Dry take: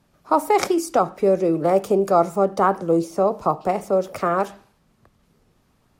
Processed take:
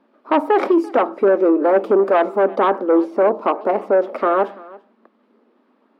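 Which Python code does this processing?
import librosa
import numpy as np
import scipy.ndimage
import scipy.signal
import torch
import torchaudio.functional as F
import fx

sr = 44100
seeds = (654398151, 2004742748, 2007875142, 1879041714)

p1 = fx.peak_eq(x, sr, hz=2300.0, db=-4.0, octaves=1.5)
p2 = fx.notch(p1, sr, hz=740.0, q=12.0)
p3 = fx.fold_sine(p2, sr, drive_db=11, ceiling_db=-4.5)
p4 = p2 + F.gain(torch.from_numpy(p3), -10.0).numpy()
p5 = fx.brickwall_highpass(p4, sr, low_hz=210.0)
p6 = fx.air_absorb(p5, sr, metres=440.0)
y = p6 + fx.echo_single(p6, sr, ms=338, db=-22.0, dry=0)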